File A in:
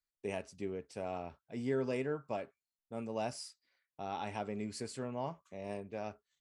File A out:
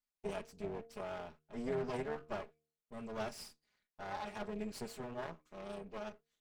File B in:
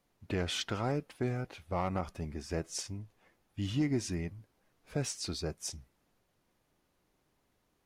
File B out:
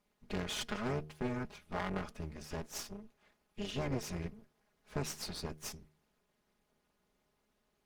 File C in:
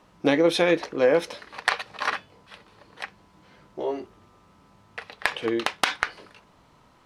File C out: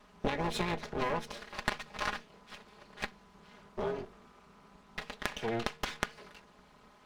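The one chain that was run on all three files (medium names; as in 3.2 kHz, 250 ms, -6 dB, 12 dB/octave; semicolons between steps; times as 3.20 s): comb filter that takes the minimum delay 4.8 ms; treble shelf 7.9 kHz -4.5 dB; de-hum 153.2 Hz, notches 3; compression 5:1, threshold -30 dBFS; AM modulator 230 Hz, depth 55%; trim +2.5 dB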